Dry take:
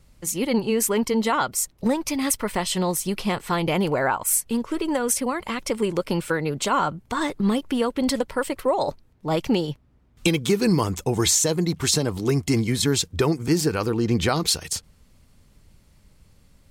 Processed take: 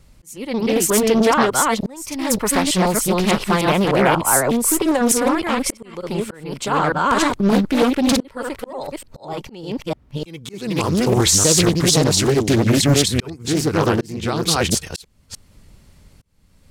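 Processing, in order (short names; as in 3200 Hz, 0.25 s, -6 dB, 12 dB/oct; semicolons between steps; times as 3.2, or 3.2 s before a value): reverse delay 0.301 s, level -1.5 dB; auto swell 0.646 s; Doppler distortion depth 0.61 ms; gain +5 dB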